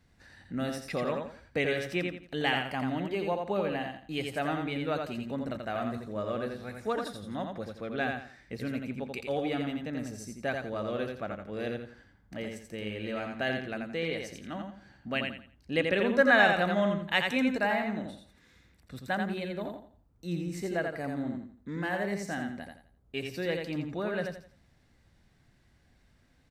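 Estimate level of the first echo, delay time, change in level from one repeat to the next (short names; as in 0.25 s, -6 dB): -4.5 dB, 85 ms, -11.0 dB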